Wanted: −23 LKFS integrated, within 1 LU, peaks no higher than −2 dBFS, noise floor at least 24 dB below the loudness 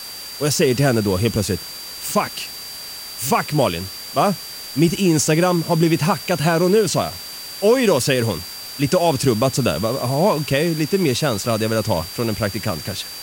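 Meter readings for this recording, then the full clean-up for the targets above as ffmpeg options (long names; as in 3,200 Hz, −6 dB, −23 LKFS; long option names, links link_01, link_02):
interfering tone 4,700 Hz; level of the tone −33 dBFS; background noise floor −33 dBFS; target noise floor −44 dBFS; integrated loudness −19.5 LKFS; sample peak −3.5 dBFS; target loudness −23.0 LKFS
→ -af "bandreject=frequency=4700:width=30"
-af "afftdn=noise_reduction=11:noise_floor=-33"
-af "volume=-3.5dB"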